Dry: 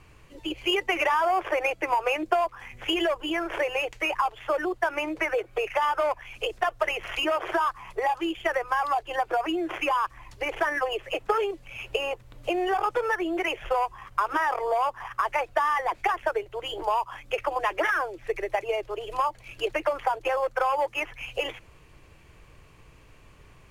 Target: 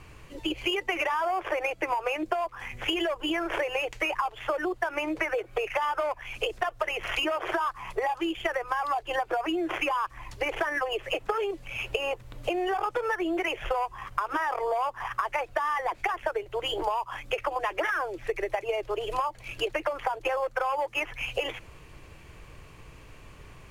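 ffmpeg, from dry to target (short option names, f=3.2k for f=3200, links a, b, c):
-af "acompressor=threshold=-30dB:ratio=6,volume=4.5dB"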